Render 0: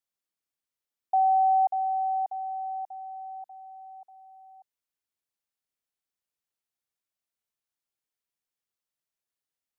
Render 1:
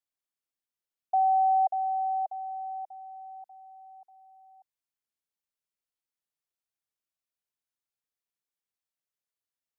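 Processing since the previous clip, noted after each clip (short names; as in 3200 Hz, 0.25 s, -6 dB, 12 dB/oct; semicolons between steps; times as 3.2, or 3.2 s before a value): dynamic EQ 630 Hz, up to +8 dB, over -41 dBFS, Q 3.3; gain -4.5 dB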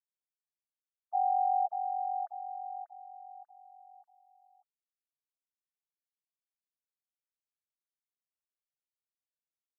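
sine-wave speech; comb 3.3 ms, depth 39%; gain -2 dB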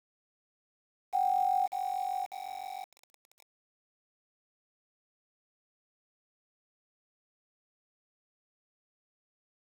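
sample gate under -42.5 dBFS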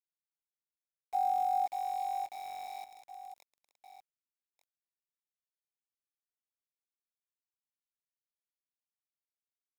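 reverse delay 0.668 s, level -12 dB; gain -1.5 dB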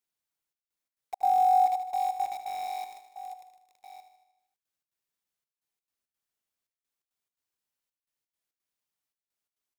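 step gate "xxxxxx..xx.xx." 171 bpm -60 dB; feedback echo 77 ms, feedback 59%, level -10.5 dB; gain +6.5 dB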